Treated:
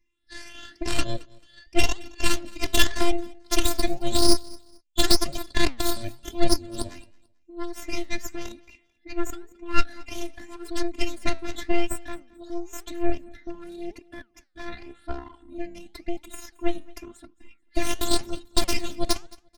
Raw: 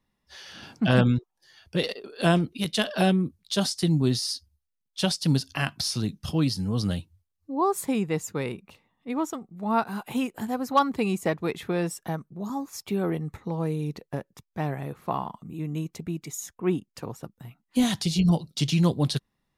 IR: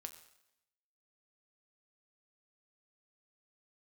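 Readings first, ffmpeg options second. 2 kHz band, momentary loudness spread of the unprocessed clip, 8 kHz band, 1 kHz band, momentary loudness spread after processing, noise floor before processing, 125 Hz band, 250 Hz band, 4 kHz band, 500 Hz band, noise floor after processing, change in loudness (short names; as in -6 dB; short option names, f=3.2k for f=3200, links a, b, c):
+2.0 dB, 13 LU, +4.0 dB, -4.0 dB, 18 LU, -80 dBFS, -12.0 dB, -5.0 dB, +3.0 dB, -2.0 dB, -64 dBFS, -1.5 dB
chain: -af "afftfilt=real='re*pow(10,15/40*sin(2*PI*(0.73*log(max(b,1)*sr/1024/100)/log(2)-(2.3)*(pts-256)/sr)))':imag='im*pow(10,15/40*sin(2*PI*(0.73*log(max(b,1)*sr/1024/100)/log(2)-(2.3)*(pts-256)/sr)))':win_size=1024:overlap=0.75,afftfilt=real='hypot(re,im)*cos(PI*b)':imag='0':win_size=512:overlap=0.75,aresample=22050,aresample=44100,equalizer=f=125:t=o:w=1:g=-5,equalizer=f=250:t=o:w=1:g=6,equalizer=f=500:t=o:w=1:g=-7,equalizer=f=1k:t=o:w=1:g=-8,equalizer=f=2k:t=o:w=1:g=11,equalizer=f=4k:t=o:w=1:g=6,equalizer=f=8k:t=o:w=1:g=4,aeval=exprs='0.631*(cos(1*acos(clip(val(0)/0.631,-1,1)))-cos(1*PI/2))+0.00891*(cos(2*acos(clip(val(0)/0.631,-1,1)))-cos(2*PI/2))+0.00891*(cos(3*acos(clip(val(0)/0.631,-1,1)))-cos(3*PI/2))+0.0316*(cos(7*acos(clip(val(0)/0.631,-1,1)))-cos(7*PI/2))+0.141*(cos(8*acos(clip(val(0)/0.631,-1,1)))-cos(8*PI/2))':c=same,flanger=delay=3:depth=7.5:regen=86:speed=0.92:shape=sinusoidal,lowshelf=f=330:g=12,aecho=1:1:220|440:0.0668|0.0167,volume=2.5dB"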